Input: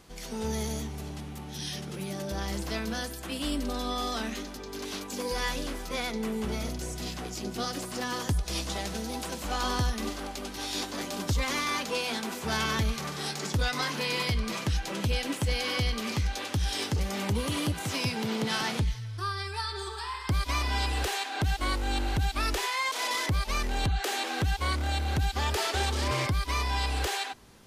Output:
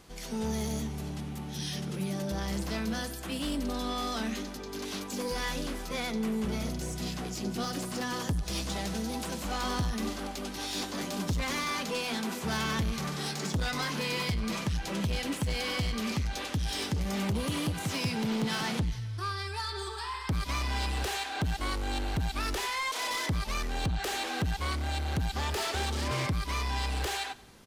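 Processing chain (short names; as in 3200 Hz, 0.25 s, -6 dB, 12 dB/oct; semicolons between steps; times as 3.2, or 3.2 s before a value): soft clip -27 dBFS, distortion -14 dB; dynamic EQ 180 Hz, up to +6 dB, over -49 dBFS, Q 1.8; on a send: feedback echo 90 ms, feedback 51%, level -21 dB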